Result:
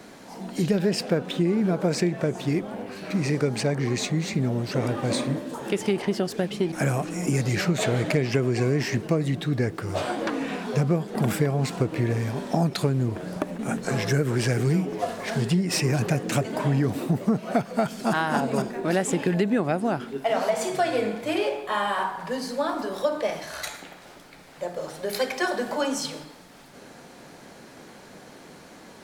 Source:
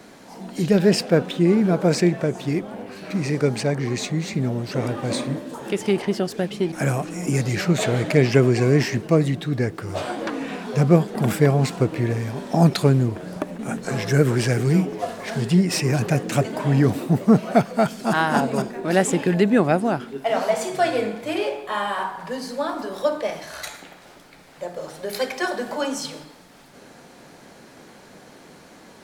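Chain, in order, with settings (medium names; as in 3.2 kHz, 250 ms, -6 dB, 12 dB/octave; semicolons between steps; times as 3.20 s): compression 6:1, threshold -19 dBFS, peak gain reduction 10.5 dB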